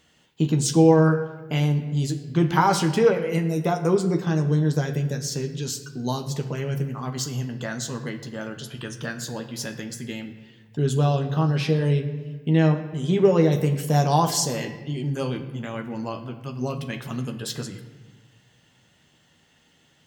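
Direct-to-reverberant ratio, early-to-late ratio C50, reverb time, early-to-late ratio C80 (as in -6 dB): 5.5 dB, 10.5 dB, 1.4 s, 12.0 dB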